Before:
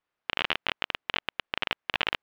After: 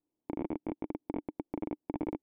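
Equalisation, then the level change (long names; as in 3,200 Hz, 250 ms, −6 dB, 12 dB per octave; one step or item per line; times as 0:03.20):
parametric band 850 Hz −11 dB 0.28 octaves
dynamic equaliser 1,400 Hz, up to −4 dB, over −41 dBFS, Q 0.88
formant resonators in series u
+15.0 dB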